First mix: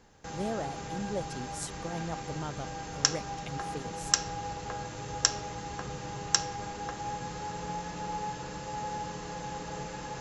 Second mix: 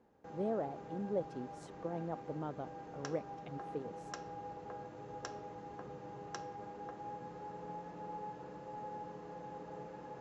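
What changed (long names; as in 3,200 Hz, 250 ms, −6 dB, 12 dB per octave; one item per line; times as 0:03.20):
background −5.5 dB
master: add resonant band-pass 420 Hz, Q 0.77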